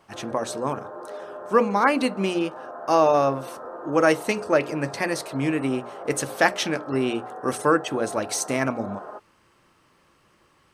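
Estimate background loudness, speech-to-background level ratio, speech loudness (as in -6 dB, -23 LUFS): -38.0 LUFS, 14.0 dB, -24.0 LUFS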